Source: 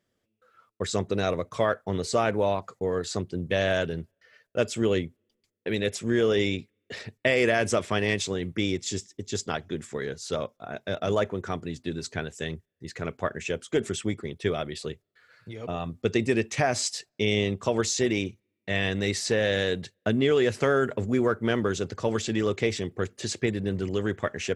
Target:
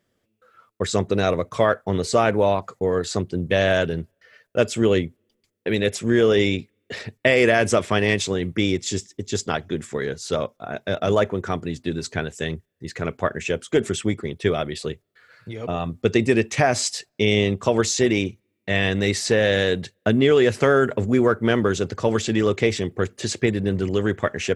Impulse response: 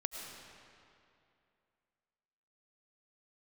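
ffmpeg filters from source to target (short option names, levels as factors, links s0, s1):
-af "equalizer=f=5500:t=o:w=1.5:g=-2,volume=2"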